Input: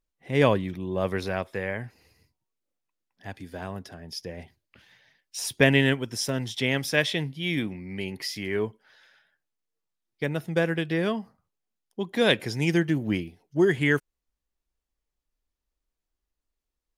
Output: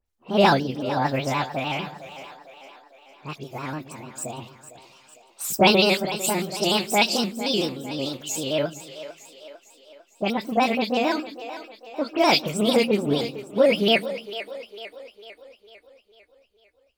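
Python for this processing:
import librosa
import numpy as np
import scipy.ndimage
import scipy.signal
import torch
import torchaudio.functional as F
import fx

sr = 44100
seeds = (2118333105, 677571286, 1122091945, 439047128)

p1 = fx.pitch_heads(x, sr, semitones=6.5)
p2 = fx.dispersion(p1, sr, late='highs', ms=63.0, hz=2800.0)
p3 = p2 + fx.echo_split(p2, sr, split_hz=360.0, low_ms=128, high_ms=453, feedback_pct=52, wet_db=-13, dry=0)
p4 = fx.vibrato_shape(p3, sr, shape='square', rate_hz=6.7, depth_cents=100.0)
y = F.gain(torch.from_numpy(p4), 4.5).numpy()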